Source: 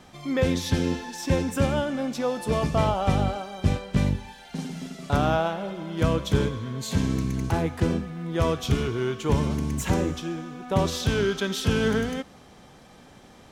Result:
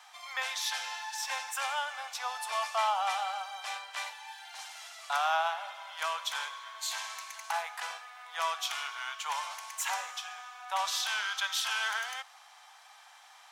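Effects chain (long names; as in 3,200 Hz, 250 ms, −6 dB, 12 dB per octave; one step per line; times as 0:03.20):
Butterworth high-pass 760 Hz 48 dB per octave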